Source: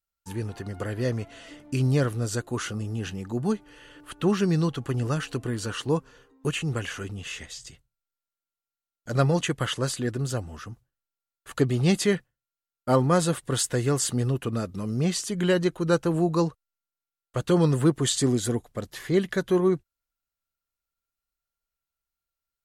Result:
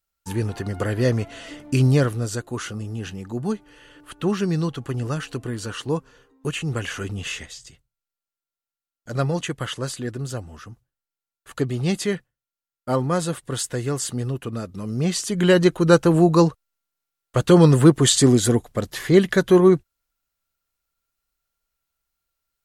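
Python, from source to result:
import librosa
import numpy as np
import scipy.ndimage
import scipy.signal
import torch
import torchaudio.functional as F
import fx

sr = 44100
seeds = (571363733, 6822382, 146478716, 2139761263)

y = fx.gain(x, sr, db=fx.line((1.79, 7.0), (2.4, 0.5), (6.48, 0.5), (7.27, 7.0), (7.61, -1.0), (14.67, -1.0), (15.66, 8.0)))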